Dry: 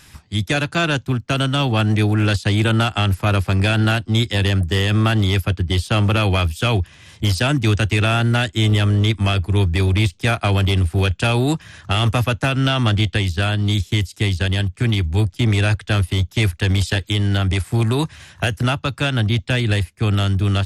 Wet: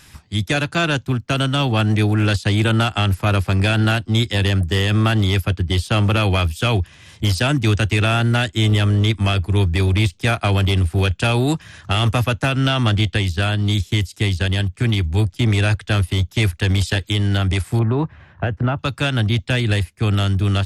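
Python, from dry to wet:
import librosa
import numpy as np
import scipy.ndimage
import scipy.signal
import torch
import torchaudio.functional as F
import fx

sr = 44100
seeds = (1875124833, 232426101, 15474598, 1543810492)

y = fx.lowpass(x, sr, hz=1400.0, slope=12, at=(17.79, 18.79))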